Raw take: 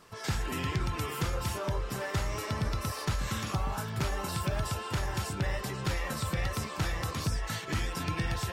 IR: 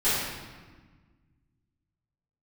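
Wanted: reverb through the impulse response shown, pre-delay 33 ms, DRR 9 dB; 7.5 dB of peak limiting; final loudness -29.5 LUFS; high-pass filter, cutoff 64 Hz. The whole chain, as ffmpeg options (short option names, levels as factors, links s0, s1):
-filter_complex "[0:a]highpass=64,alimiter=level_in=1.26:limit=0.0631:level=0:latency=1,volume=0.794,asplit=2[s0][s1];[1:a]atrim=start_sample=2205,adelay=33[s2];[s1][s2]afir=irnorm=-1:irlink=0,volume=0.0708[s3];[s0][s3]amix=inputs=2:normalize=0,volume=2"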